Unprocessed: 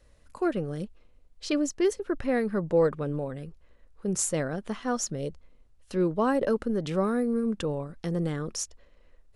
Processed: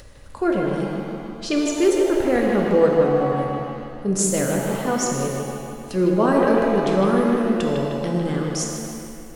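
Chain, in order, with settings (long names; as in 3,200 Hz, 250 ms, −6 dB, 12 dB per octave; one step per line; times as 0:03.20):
upward compression, threshold −40 dBFS
bucket-brigade delay 154 ms, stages 4,096, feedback 60%, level −5 dB
reverb with rising layers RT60 1.7 s, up +7 semitones, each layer −8 dB, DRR 2 dB
level +4.5 dB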